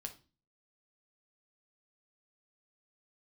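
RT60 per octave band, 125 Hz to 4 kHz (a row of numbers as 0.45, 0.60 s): 0.55, 0.50, 0.35, 0.30, 0.30, 0.35 s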